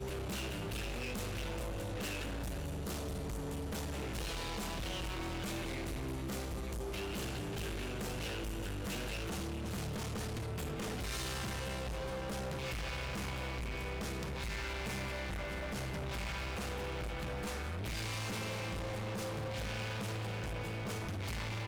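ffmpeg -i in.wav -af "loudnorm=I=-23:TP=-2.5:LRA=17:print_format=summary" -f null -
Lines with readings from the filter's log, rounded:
Input Integrated:    -39.6 LUFS
Input True Peak:     -30.0 dBTP
Input LRA:             0.8 LU
Input Threshold:     -49.6 LUFS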